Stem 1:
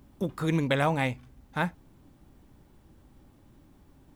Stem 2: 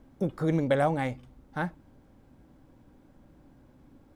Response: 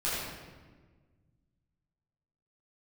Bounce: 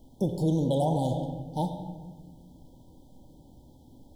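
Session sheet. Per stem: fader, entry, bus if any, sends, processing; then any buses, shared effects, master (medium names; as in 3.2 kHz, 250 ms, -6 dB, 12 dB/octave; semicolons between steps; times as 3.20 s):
-8.0 dB, 0.00 s, no send, none
-0.5 dB, 0.00 s, send -12.5 dB, treble shelf 2 kHz +8.5 dB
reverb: on, RT60 1.4 s, pre-delay 8 ms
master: FFT band-reject 980–3000 Hz; peak limiter -17.5 dBFS, peak gain reduction 7 dB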